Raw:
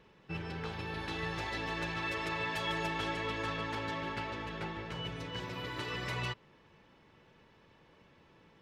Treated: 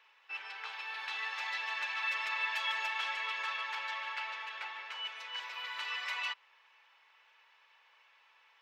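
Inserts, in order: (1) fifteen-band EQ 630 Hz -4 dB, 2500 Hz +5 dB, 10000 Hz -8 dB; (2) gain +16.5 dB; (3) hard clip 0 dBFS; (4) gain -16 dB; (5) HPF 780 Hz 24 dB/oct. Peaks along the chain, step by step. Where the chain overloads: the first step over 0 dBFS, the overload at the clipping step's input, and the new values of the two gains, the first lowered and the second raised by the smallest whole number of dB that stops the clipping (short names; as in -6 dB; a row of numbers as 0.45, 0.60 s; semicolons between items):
-22.0, -5.5, -5.5, -21.5, -22.5 dBFS; no overload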